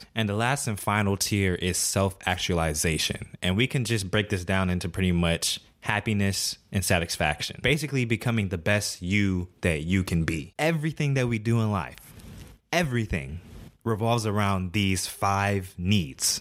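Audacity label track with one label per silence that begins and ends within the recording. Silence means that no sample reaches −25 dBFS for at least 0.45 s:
11.980000	12.730000	silence
13.230000	13.860000	silence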